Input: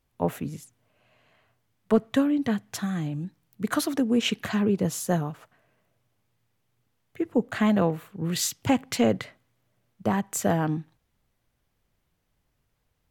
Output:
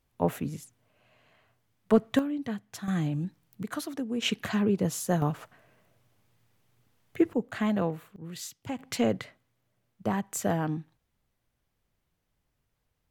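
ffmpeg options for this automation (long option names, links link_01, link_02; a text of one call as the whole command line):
ffmpeg -i in.wav -af "asetnsamples=nb_out_samples=441:pad=0,asendcmd='2.19 volume volume -8dB;2.88 volume volume 1dB;3.63 volume volume -9dB;4.22 volume volume -2dB;5.22 volume volume 5dB;7.33 volume volume -5.5dB;8.16 volume volume -13dB;8.79 volume volume -4dB',volume=-0.5dB" out.wav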